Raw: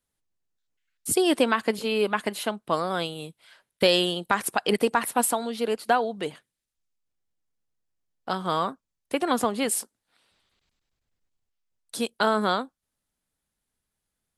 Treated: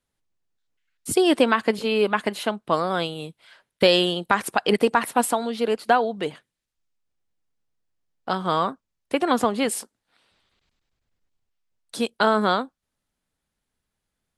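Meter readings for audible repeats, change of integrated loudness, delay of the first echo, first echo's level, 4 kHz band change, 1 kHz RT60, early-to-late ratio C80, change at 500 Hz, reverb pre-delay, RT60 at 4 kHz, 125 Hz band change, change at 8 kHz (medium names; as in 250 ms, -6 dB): no echo, +3.0 dB, no echo, no echo, +2.0 dB, no reverb, no reverb, +3.5 dB, no reverb, no reverb, +3.5 dB, -2.5 dB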